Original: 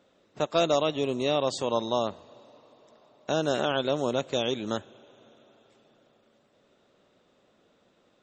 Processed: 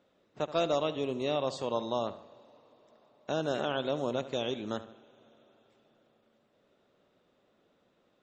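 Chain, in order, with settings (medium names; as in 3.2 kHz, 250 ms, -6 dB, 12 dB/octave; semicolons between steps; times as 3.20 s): treble shelf 7.3 kHz -11 dB; on a send: filtered feedback delay 75 ms, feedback 45%, low-pass 4.3 kHz, level -14 dB; on the sum: trim -5 dB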